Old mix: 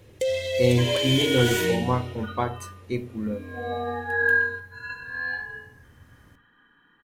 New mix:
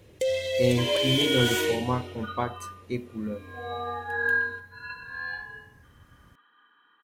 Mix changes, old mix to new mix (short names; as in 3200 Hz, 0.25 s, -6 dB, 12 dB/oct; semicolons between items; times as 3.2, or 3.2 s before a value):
second sound: add speaker cabinet 470–4500 Hz, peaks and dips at 600 Hz -7 dB, 1200 Hz +6 dB, 1800 Hz -6 dB, 3600 Hz +5 dB; reverb: off